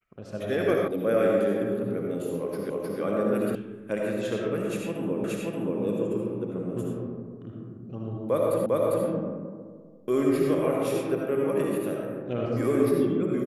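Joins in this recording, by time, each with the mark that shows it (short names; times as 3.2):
0.88 sound cut off
2.7 repeat of the last 0.31 s
3.55 sound cut off
5.24 repeat of the last 0.58 s
8.66 repeat of the last 0.4 s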